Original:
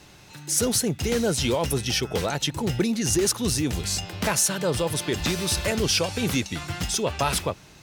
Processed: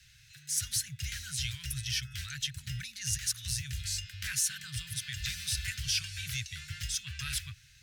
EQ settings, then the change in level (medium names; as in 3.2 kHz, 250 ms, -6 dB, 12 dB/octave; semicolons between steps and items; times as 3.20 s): Chebyshev band-stop 130–1600 Hz, order 4; -7.0 dB